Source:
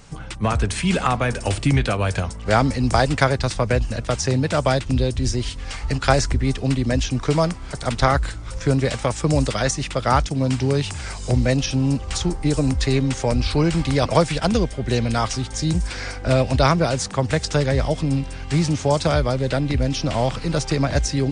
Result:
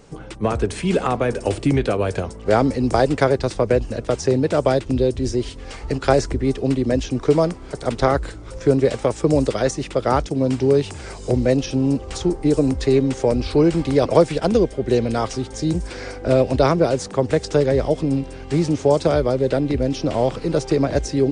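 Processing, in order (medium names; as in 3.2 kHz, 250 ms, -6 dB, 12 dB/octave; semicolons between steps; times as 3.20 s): peaking EQ 400 Hz +13.5 dB 1.5 oct; trim -5.5 dB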